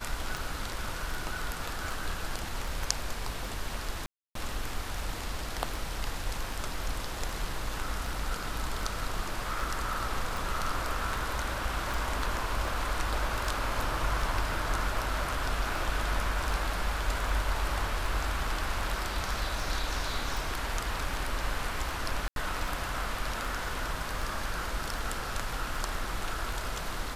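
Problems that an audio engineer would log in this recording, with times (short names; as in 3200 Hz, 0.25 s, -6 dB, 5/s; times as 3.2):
tick 78 rpm
4.06–4.35 gap 0.293 s
11.94 pop
22.28–22.36 gap 82 ms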